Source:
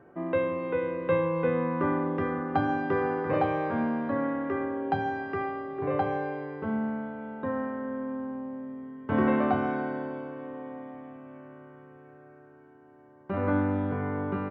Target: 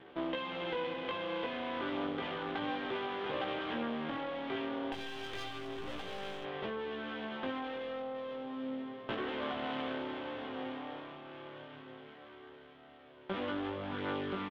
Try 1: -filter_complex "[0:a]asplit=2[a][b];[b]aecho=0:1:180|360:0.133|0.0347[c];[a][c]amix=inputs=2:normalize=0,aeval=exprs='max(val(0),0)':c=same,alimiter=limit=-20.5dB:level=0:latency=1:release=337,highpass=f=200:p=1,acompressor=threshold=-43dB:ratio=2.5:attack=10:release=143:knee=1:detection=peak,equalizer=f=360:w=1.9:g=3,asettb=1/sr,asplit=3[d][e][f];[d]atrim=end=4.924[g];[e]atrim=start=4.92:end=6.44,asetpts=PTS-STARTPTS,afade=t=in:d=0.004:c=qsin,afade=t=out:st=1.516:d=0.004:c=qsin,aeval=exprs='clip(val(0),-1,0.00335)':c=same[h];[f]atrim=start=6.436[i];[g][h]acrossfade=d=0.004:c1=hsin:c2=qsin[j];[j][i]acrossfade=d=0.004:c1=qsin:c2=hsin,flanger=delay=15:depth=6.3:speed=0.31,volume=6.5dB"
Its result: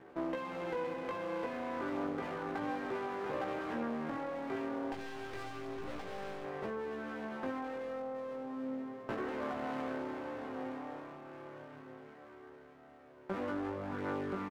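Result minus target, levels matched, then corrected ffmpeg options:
4000 Hz band -11.0 dB
-filter_complex "[0:a]asplit=2[a][b];[b]aecho=0:1:180|360:0.133|0.0347[c];[a][c]amix=inputs=2:normalize=0,aeval=exprs='max(val(0),0)':c=same,alimiter=limit=-20.5dB:level=0:latency=1:release=337,highpass=f=200:p=1,acompressor=threshold=-43dB:ratio=2.5:attack=10:release=143:knee=1:detection=peak,lowpass=f=3.3k:t=q:w=6,equalizer=f=360:w=1.9:g=3,asettb=1/sr,asplit=3[d][e][f];[d]atrim=end=4.924[g];[e]atrim=start=4.92:end=6.44,asetpts=PTS-STARTPTS,afade=t=in:d=0.004:c=qsin,afade=t=out:st=1.516:d=0.004:c=qsin,aeval=exprs='clip(val(0),-1,0.00335)':c=same[h];[f]atrim=start=6.436[i];[g][h]acrossfade=d=0.004:c1=hsin:c2=qsin[j];[j][i]acrossfade=d=0.004:c1=qsin:c2=hsin,flanger=delay=15:depth=6.3:speed=0.31,volume=6.5dB"

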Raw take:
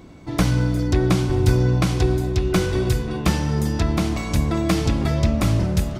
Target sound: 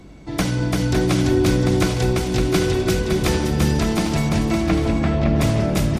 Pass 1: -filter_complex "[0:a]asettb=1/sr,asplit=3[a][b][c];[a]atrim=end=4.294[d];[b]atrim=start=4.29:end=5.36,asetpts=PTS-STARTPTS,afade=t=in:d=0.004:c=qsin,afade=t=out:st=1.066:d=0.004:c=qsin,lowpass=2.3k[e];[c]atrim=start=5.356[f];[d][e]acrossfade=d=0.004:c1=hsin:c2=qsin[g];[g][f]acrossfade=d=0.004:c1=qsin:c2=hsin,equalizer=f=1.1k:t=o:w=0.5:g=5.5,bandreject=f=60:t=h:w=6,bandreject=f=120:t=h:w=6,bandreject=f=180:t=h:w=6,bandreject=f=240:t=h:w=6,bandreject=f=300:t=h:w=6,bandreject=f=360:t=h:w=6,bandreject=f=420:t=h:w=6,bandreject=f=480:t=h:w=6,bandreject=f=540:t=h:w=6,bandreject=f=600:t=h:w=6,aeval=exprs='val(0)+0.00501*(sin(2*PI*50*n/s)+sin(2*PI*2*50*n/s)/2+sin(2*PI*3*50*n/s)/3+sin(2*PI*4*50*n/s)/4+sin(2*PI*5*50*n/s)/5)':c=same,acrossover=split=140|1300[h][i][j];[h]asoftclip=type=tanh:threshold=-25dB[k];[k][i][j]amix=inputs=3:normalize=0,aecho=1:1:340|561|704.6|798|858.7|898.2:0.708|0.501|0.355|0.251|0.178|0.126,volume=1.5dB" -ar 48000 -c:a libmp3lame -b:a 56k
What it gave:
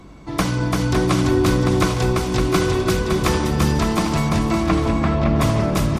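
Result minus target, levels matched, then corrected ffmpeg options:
1000 Hz band +4.5 dB
-filter_complex "[0:a]asettb=1/sr,asplit=3[a][b][c];[a]atrim=end=4.294[d];[b]atrim=start=4.29:end=5.36,asetpts=PTS-STARTPTS,afade=t=in:d=0.004:c=qsin,afade=t=out:st=1.066:d=0.004:c=qsin,lowpass=2.3k[e];[c]atrim=start=5.356[f];[d][e]acrossfade=d=0.004:c1=hsin:c2=qsin[g];[g][f]acrossfade=d=0.004:c1=qsin:c2=hsin,equalizer=f=1.1k:t=o:w=0.5:g=-4,bandreject=f=60:t=h:w=6,bandreject=f=120:t=h:w=6,bandreject=f=180:t=h:w=6,bandreject=f=240:t=h:w=6,bandreject=f=300:t=h:w=6,bandreject=f=360:t=h:w=6,bandreject=f=420:t=h:w=6,bandreject=f=480:t=h:w=6,bandreject=f=540:t=h:w=6,bandreject=f=600:t=h:w=6,aeval=exprs='val(0)+0.00501*(sin(2*PI*50*n/s)+sin(2*PI*2*50*n/s)/2+sin(2*PI*3*50*n/s)/3+sin(2*PI*4*50*n/s)/4+sin(2*PI*5*50*n/s)/5)':c=same,acrossover=split=140|1300[h][i][j];[h]asoftclip=type=tanh:threshold=-25dB[k];[k][i][j]amix=inputs=3:normalize=0,aecho=1:1:340|561|704.6|798|858.7|898.2:0.708|0.501|0.355|0.251|0.178|0.126,volume=1.5dB" -ar 48000 -c:a libmp3lame -b:a 56k

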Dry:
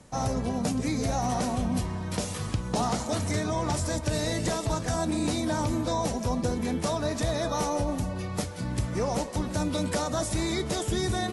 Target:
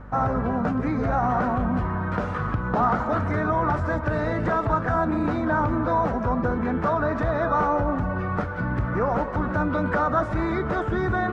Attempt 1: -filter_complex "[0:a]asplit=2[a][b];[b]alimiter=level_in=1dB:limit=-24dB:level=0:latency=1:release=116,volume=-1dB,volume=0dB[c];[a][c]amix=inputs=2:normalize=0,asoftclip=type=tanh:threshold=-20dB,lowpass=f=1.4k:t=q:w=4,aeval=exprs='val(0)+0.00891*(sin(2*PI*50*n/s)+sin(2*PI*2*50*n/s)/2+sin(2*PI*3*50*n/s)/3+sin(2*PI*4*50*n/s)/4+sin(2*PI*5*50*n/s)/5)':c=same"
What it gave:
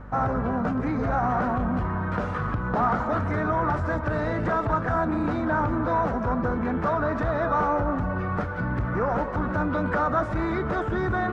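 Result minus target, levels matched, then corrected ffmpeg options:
soft clip: distortion +10 dB
-filter_complex "[0:a]asplit=2[a][b];[b]alimiter=level_in=1dB:limit=-24dB:level=0:latency=1:release=116,volume=-1dB,volume=0dB[c];[a][c]amix=inputs=2:normalize=0,asoftclip=type=tanh:threshold=-13.5dB,lowpass=f=1.4k:t=q:w=4,aeval=exprs='val(0)+0.00891*(sin(2*PI*50*n/s)+sin(2*PI*2*50*n/s)/2+sin(2*PI*3*50*n/s)/3+sin(2*PI*4*50*n/s)/4+sin(2*PI*5*50*n/s)/5)':c=same"

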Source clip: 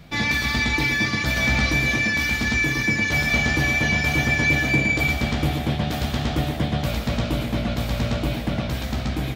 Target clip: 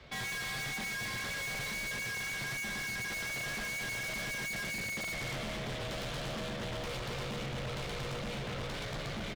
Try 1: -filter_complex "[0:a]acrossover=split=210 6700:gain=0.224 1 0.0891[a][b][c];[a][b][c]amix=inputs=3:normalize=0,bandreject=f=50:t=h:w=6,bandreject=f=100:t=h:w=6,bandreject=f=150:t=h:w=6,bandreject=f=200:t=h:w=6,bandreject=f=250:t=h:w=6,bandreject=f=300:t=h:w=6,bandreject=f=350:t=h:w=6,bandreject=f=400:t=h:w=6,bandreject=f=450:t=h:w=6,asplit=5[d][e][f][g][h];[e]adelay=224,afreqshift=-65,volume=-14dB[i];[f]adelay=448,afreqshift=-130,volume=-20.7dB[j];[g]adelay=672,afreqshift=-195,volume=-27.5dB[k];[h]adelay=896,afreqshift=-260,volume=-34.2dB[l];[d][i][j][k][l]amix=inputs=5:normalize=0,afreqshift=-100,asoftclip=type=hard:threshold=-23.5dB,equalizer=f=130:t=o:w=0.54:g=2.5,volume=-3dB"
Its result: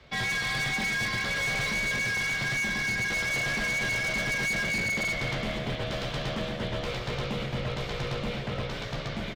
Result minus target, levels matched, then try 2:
hard clip: distortion -6 dB
-filter_complex "[0:a]acrossover=split=210 6700:gain=0.224 1 0.0891[a][b][c];[a][b][c]amix=inputs=3:normalize=0,bandreject=f=50:t=h:w=6,bandreject=f=100:t=h:w=6,bandreject=f=150:t=h:w=6,bandreject=f=200:t=h:w=6,bandreject=f=250:t=h:w=6,bandreject=f=300:t=h:w=6,bandreject=f=350:t=h:w=6,bandreject=f=400:t=h:w=6,bandreject=f=450:t=h:w=6,asplit=5[d][e][f][g][h];[e]adelay=224,afreqshift=-65,volume=-14dB[i];[f]adelay=448,afreqshift=-130,volume=-20.7dB[j];[g]adelay=672,afreqshift=-195,volume=-27.5dB[k];[h]adelay=896,afreqshift=-260,volume=-34.2dB[l];[d][i][j][k][l]amix=inputs=5:normalize=0,afreqshift=-100,asoftclip=type=hard:threshold=-34dB,equalizer=f=130:t=o:w=0.54:g=2.5,volume=-3dB"

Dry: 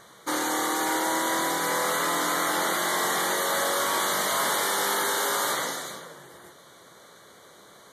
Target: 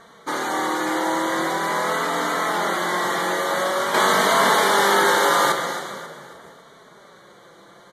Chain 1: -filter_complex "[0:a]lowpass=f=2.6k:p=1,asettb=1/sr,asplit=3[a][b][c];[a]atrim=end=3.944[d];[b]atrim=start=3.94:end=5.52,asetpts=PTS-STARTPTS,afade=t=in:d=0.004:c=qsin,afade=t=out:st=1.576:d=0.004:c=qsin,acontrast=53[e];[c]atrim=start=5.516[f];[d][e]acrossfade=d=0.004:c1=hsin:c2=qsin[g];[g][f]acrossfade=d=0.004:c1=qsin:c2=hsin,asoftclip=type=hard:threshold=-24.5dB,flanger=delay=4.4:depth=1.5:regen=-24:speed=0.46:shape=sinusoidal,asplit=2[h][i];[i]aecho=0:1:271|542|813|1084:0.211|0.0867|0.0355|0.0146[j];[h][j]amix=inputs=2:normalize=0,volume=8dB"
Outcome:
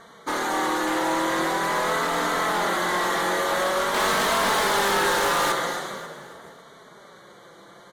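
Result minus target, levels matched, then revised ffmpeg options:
hard clip: distortion +29 dB
-filter_complex "[0:a]lowpass=f=2.6k:p=1,asettb=1/sr,asplit=3[a][b][c];[a]atrim=end=3.944[d];[b]atrim=start=3.94:end=5.52,asetpts=PTS-STARTPTS,afade=t=in:d=0.004:c=qsin,afade=t=out:st=1.576:d=0.004:c=qsin,acontrast=53[e];[c]atrim=start=5.516[f];[d][e]acrossfade=d=0.004:c1=hsin:c2=qsin[g];[g][f]acrossfade=d=0.004:c1=qsin:c2=hsin,asoftclip=type=hard:threshold=-13.5dB,flanger=delay=4.4:depth=1.5:regen=-24:speed=0.46:shape=sinusoidal,asplit=2[h][i];[i]aecho=0:1:271|542|813|1084:0.211|0.0867|0.0355|0.0146[j];[h][j]amix=inputs=2:normalize=0,volume=8dB"

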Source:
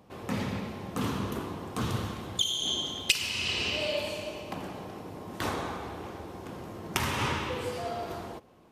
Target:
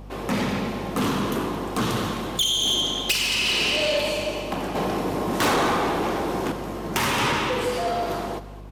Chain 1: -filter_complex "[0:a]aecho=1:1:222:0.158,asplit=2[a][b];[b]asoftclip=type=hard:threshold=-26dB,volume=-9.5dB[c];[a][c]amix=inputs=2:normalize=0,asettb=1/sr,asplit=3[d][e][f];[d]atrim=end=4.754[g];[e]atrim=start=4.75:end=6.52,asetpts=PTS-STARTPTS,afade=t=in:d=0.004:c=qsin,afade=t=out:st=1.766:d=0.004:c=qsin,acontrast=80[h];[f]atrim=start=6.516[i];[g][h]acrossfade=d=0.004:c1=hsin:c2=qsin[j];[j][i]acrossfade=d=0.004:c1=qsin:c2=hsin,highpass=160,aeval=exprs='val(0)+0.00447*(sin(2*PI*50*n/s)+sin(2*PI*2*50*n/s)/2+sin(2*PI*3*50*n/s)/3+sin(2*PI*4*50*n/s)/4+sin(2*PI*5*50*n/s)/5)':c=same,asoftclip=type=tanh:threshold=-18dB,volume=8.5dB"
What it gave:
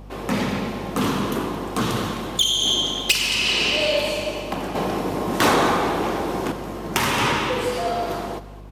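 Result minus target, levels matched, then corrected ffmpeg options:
hard clip: distortion +12 dB; soft clip: distortion -8 dB
-filter_complex "[0:a]aecho=1:1:222:0.158,asplit=2[a][b];[b]asoftclip=type=hard:threshold=-15dB,volume=-9.5dB[c];[a][c]amix=inputs=2:normalize=0,asettb=1/sr,asplit=3[d][e][f];[d]atrim=end=4.754[g];[e]atrim=start=4.75:end=6.52,asetpts=PTS-STARTPTS,afade=t=in:d=0.004:c=qsin,afade=t=out:st=1.766:d=0.004:c=qsin,acontrast=80[h];[f]atrim=start=6.516[i];[g][h]acrossfade=d=0.004:c1=hsin:c2=qsin[j];[j][i]acrossfade=d=0.004:c1=qsin:c2=hsin,highpass=160,aeval=exprs='val(0)+0.00447*(sin(2*PI*50*n/s)+sin(2*PI*2*50*n/s)/2+sin(2*PI*3*50*n/s)/3+sin(2*PI*4*50*n/s)/4+sin(2*PI*5*50*n/s)/5)':c=same,asoftclip=type=tanh:threshold=-25.5dB,volume=8.5dB"

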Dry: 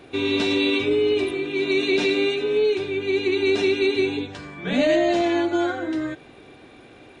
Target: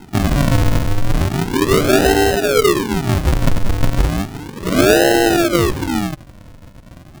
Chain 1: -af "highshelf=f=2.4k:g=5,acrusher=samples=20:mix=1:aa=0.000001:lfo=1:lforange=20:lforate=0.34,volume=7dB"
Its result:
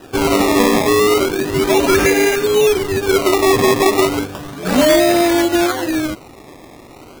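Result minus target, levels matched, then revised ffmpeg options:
decimation with a swept rate: distortion -24 dB
-af "highshelf=f=2.4k:g=5,acrusher=samples=75:mix=1:aa=0.000001:lfo=1:lforange=75:lforate=0.34,volume=7dB"

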